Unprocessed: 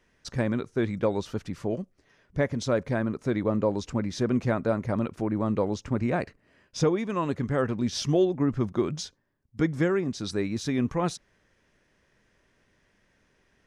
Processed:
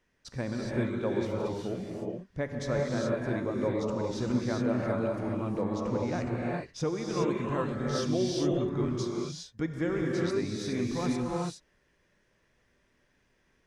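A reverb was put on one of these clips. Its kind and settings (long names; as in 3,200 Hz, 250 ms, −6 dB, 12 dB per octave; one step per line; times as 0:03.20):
reverb whose tail is shaped and stops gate 440 ms rising, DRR −2.5 dB
level −7.5 dB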